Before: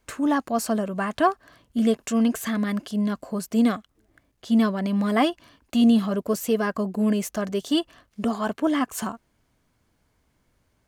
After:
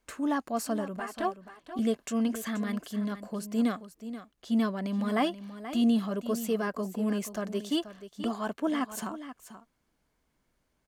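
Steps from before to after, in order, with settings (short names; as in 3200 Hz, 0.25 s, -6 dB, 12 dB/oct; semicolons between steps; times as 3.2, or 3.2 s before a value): bell 95 Hz -14.5 dB 0.47 oct; 0.96–1.79 envelope flanger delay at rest 8.8 ms, full sweep at -14.5 dBFS; echo 0.481 s -12.5 dB; gain -6.5 dB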